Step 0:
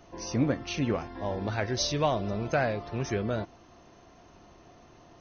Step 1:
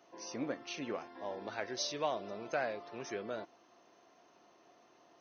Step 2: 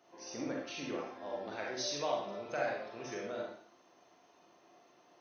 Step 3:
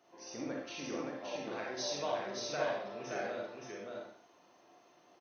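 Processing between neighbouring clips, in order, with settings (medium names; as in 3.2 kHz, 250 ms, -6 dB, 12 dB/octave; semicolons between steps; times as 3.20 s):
high-pass 330 Hz 12 dB/octave; trim -7.5 dB
reverberation RT60 0.55 s, pre-delay 35 ms, DRR -2 dB; trim -3.5 dB
delay 572 ms -3 dB; trim -1.5 dB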